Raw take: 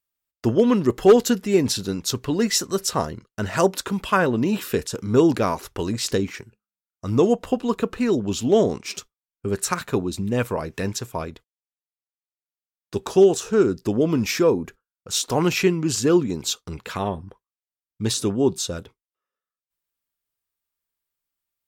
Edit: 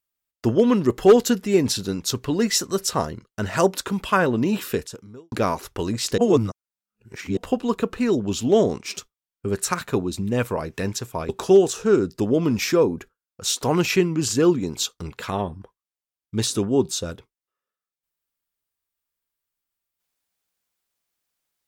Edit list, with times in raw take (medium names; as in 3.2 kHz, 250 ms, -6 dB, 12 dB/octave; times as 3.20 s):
4.70–5.32 s: fade out quadratic
6.18–7.37 s: reverse
11.29–12.96 s: delete